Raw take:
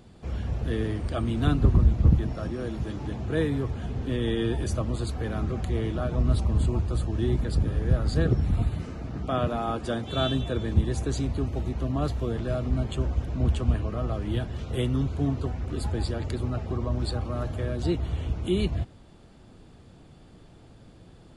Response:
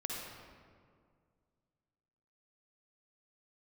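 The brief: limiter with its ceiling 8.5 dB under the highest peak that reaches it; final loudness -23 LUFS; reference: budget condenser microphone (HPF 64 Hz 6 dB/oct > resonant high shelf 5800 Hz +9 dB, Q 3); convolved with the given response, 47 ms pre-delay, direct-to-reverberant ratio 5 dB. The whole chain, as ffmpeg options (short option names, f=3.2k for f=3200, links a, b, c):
-filter_complex "[0:a]alimiter=limit=-19dB:level=0:latency=1,asplit=2[a][b];[1:a]atrim=start_sample=2205,adelay=47[c];[b][c]afir=irnorm=-1:irlink=0,volume=-6.5dB[d];[a][d]amix=inputs=2:normalize=0,highpass=f=64:p=1,highshelf=f=5.8k:t=q:w=3:g=9,volume=6dB"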